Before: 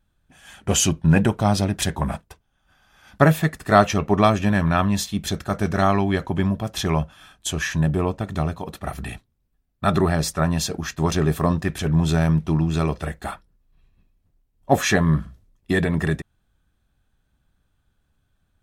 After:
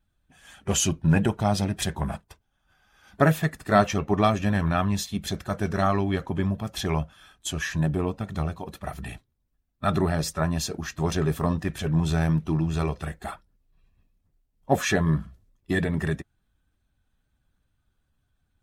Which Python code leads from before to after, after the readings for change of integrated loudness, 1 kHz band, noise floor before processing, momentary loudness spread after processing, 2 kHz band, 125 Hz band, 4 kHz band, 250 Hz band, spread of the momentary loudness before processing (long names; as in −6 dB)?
−4.5 dB, −4.5 dB, −70 dBFS, 13 LU, −4.5 dB, −4.0 dB, −4.5 dB, −4.5 dB, 12 LU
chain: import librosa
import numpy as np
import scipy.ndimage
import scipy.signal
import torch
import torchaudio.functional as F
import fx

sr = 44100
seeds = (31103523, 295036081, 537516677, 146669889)

y = fx.spec_quant(x, sr, step_db=15)
y = y * 10.0 ** (-4.0 / 20.0)